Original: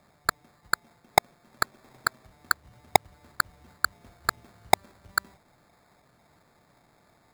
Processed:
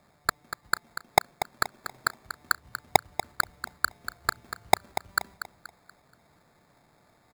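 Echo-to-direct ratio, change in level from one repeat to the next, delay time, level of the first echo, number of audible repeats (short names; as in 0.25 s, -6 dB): -10.0 dB, -9.0 dB, 0.239 s, -10.5 dB, 3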